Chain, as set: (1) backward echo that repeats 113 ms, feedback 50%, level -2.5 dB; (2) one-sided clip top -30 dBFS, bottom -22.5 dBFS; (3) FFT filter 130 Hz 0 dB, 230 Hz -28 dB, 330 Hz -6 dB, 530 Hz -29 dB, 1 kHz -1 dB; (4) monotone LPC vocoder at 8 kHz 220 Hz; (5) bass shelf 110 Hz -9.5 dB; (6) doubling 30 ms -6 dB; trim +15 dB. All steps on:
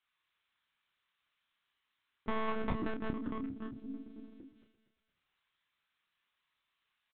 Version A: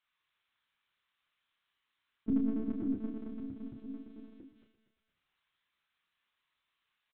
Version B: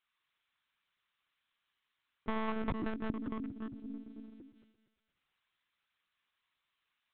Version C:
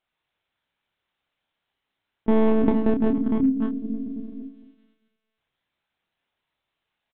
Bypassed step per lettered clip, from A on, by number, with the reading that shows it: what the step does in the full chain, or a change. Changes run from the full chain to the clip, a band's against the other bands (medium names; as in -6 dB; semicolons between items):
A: 2, distortion -11 dB; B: 6, 250 Hz band +2.0 dB; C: 3, 2 kHz band -11.0 dB